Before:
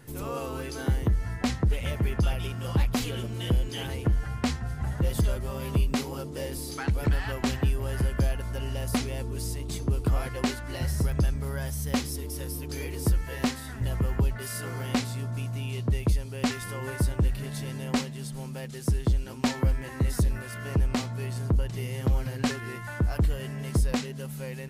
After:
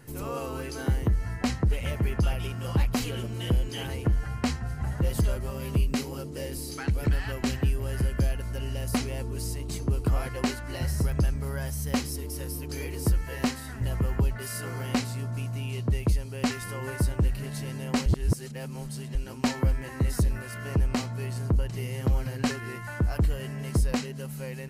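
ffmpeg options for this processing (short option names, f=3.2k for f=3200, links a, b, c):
-filter_complex "[0:a]asettb=1/sr,asplit=3[a][b][c];[a]atrim=end=5.504[d];[b]atrim=start=5.5:end=8.94,asetpts=PTS-STARTPTS,afade=t=in:d=0.004:c=qsin,afade=t=out:st=3.436:d=0.004:c=qsin,equalizer=f=930:w=1.1:g=-4.5[e];[c]atrim=start=8.936[f];[d][e]acrossfade=d=0.004:c1=hsin:c2=qsin[g];[g][f]acrossfade=d=0.004:c1=qsin:c2=hsin,asplit=3[h][i][j];[h]atrim=end=18.062[k];[i]atrim=start=18.058:end=19.152,asetpts=PTS-STARTPTS,areverse[l];[j]atrim=start=19.148[m];[k][l]acrossfade=d=0.004:c1=hsin:c2=hsin[n];[n][m]acrossfade=d=0.004:c1=hsin:c2=hsin,bandreject=f=3.5k:w=10"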